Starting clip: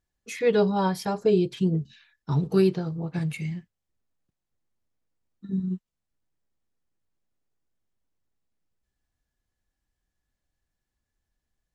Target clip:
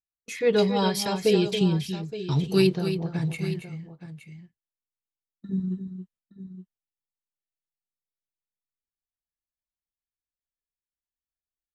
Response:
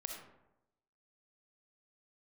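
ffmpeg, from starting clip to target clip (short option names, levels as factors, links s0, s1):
-filter_complex "[0:a]agate=range=0.0631:threshold=0.00398:ratio=16:detection=peak,asettb=1/sr,asplit=3[s0][s1][s2];[s0]atrim=end=0.584[s3];[s1]atrim=start=0.58:end=2.67,asetpts=PTS-STARTPTS,afade=t=in:d=0.004:c=qsin,afade=t=out:st=2.086:d=0.004:c=qsin,highshelf=f=1800:t=q:w=1.5:g=8.5[s4];[s2]atrim=start=2.666[s5];[s3][s4]acrossfade=d=0.004:c1=hsin:c2=qsin[s6];[s6][s5]acrossfade=d=0.004:c1=qsin:c2=hsin,aecho=1:1:277|869:0.355|0.211"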